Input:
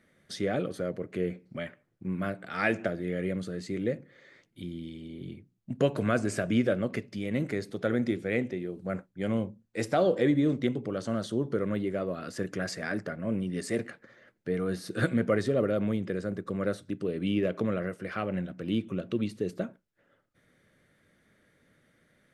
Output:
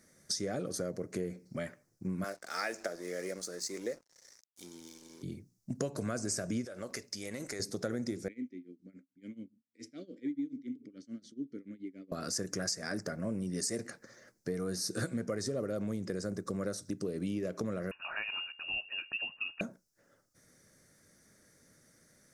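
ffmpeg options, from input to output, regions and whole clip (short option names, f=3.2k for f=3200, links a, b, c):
-filter_complex "[0:a]asettb=1/sr,asplit=3[a][b][c];[a]atrim=end=2.244[d];[b]atrim=start=2.24:end=5.23,asetpts=PTS-STARTPTS,afade=t=in:d=0.004:c=qsin,afade=t=out:st=2.986:d=0.004:c=qsin,highpass=460,aeval=exprs='sgn(val(0))*max(abs(val(0))-0.0015,0)':c=same[e];[c]atrim=start=5.226[f];[d][e]acrossfade=d=0.004:c1=hsin:c2=qsin[g];[g][f]acrossfade=d=0.004:c1=qsin:c2=hsin,asettb=1/sr,asplit=3[h][i][j];[h]atrim=end=6.654[k];[i]atrim=start=6.65:end=7.6,asetpts=PTS-STARTPTS,afade=t=in:d=0.004:c=qsin,afade=t=out:st=0.946:d=0.004:c=qsin,equalizer=f=150:t=o:w=2.7:g=-14.5,acompressor=threshold=-34dB:ratio=10:attack=3.2:release=140:knee=1:detection=peak[l];[j]atrim=start=7.596[m];[k][l]acrossfade=d=0.004:c1=hsin:c2=qsin[n];[n][m]acrossfade=d=0.004:c1=qsin:c2=hsin,asettb=1/sr,asplit=3[o][p][q];[o]atrim=end=8.284[r];[p]atrim=start=8.28:end=12.12,asetpts=PTS-STARTPTS,afade=t=in:d=0.004:c=qsin,afade=t=out:st=3.836:d=0.004:c=qsin,tremolo=f=7:d=0.92,asplit=3[s][t][u];[s]bandpass=f=270:t=q:w=8,volume=0dB[v];[t]bandpass=f=2.29k:t=q:w=8,volume=-6dB[w];[u]bandpass=f=3.01k:t=q:w=8,volume=-9dB[x];[v][w][x]amix=inputs=3:normalize=0[y];[q]atrim=start=12.116[z];[r][y]acrossfade=d=0.004:c1=hsin:c2=qsin[aa];[aa][z]acrossfade=d=0.004:c1=qsin:c2=hsin,asettb=1/sr,asplit=3[ab][ac][ad];[ab]atrim=end=17.914[ae];[ac]atrim=start=17.91:end=19.61,asetpts=PTS-STARTPTS,afade=t=in:d=0.004:c=qsin,afade=t=out:st=1.696:d=0.004:c=qsin,highpass=f=140:w=0.5412,highpass=f=140:w=1.3066,bandreject=f=950:w=9.9,lowpass=f=2.6k:t=q:w=0.5098,lowpass=f=2.6k:t=q:w=0.6013,lowpass=f=2.6k:t=q:w=0.9,lowpass=f=2.6k:t=q:w=2.563,afreqshift=-3000[af];[ad]atrim=start=19.606[ag];[ae][af]acrossfade=d=0.004:c1=hsin:c2=qsin[ah];[ah][ag]acrossfade=d=0.004:c1=qsin:c2=hsin,highshelf=f=4.2k:t=q:w=3:g=10.5,acompressor=threshold=-32dB:ratio=6"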